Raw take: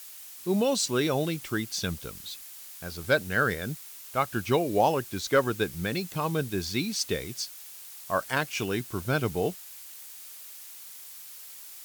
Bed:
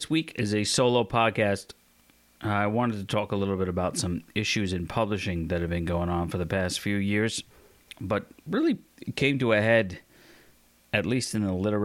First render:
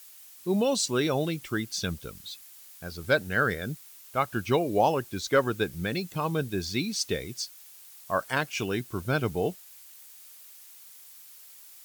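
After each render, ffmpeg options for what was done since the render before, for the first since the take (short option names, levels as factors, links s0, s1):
-af "afftdn=nr=6:nf=-45"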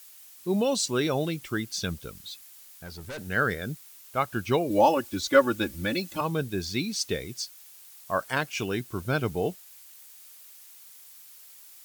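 -filter_complex "[0:a]asettb=1/sr,asplit=3[s0][s1][s2];[s0]atrim=end=2.634[s3];[s1]atrim=start=2.63:end=3.19,asetpts=PTS-STARTPTS,afade=t=in:d=0.004:c=qsin,afade=t=out:st=0.556:d=0.004:c=qsin,aeval=exprs='(tanh(56.2*val(0)+0.15)-tanh(0.15))/56.2':c=same[s4];[s2]atrim=start=3.186[s5];[s3][s4]acrossfade=d=0.004:c1=hsin:c2=qsin[s6];[s6][s5]acrossfade=d=0.004:c1=qsin:c2=hsin,asettb=1/sr,asplit=3[s7][s8][s9];[s7]atrim=end=4.704[s10];[s8]atrim=start=4.7:end=6.21,asetpts=PTS-STARTPTS,afade=t=in:d=0.004:c=qsin,afade=t=out:st=1.506:d=0.004:c=qsin,aecho=1:1:3.5:0.96,atrim=end_sample=66591[s11];[s9]atrim=start=6.206[s12];[s10][s11]acrossfade=d=0.004:c1=hsin:c2=qsin[s13];[s13][s12]acrossfade=d=0.004:c1=qsin:c2=hsin"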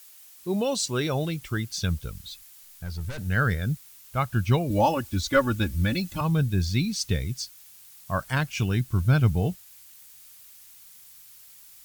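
-af "asubboost=boost=8.5:cutoff=130"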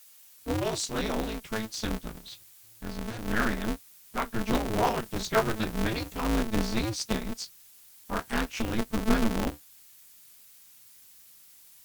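-af "flanger=delay=8:depth=8.7:regen=-44:speed=0.28:shape=triangular,aeval=exprs='val(0)*sgn(sin(2*PI*110*n/s))':c=same"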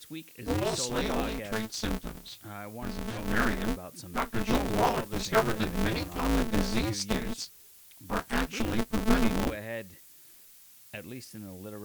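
-filter_complex "[1:a]volume=0.158[s0];[0:a][s0]amix=inputs=2:normalize=0"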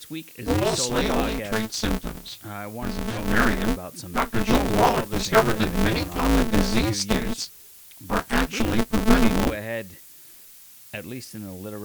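-af "volume=2.24"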